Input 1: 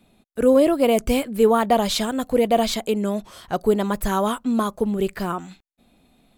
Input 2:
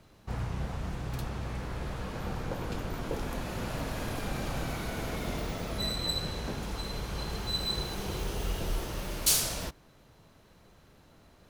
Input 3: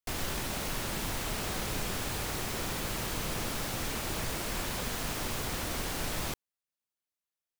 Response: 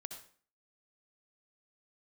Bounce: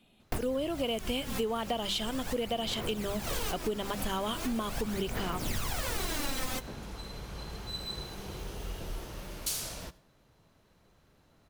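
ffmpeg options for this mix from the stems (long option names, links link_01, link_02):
-filter_complex "[0:a]equalizer=frequency=3000:width_type=o:width=0.37:gain=14,bandreject=frequency=50:width_type=h:width=6,bandreject=frequency=100:width_type=h:width=6,bandreject=frequency=150:width_type=h:width=6,bandreject=frequency=200:width_type=h:width=6,volume=-7dB,asplit=2[link_01][link_02];[1:a]adelay=200,volume=-8dB,asplit=2[link_03][link_04];[link_04]volume=-9dB[link_05];[2:a]aphaser=in_gain=1:out_gain=1:delay=3.9:decay=0.67:speed=0.4:type=sinusoidal,adelay=250,volume=2.5dB,asplit=2[link_06][link_07];[link_07]volume=-16dB[link_08];[link_02]apad=whole_len=345756[link_09];[link_06][link_09]sidechaincompress=threshold=-41dB:ratio=8:attack=7.2:release=187[link_10];[3:a]atrim=start_sample=2205[link_11];[link_05][link_08]amix=inputs=2:normalize=0[link_12];[link_12][link_11]afir=irnorm=-1:irlink=0[link_13];[link_01][link_03][link_10][link_13]amix=inputs=4:normalize=0,acompressor=threshold=-29dB:ratio=6"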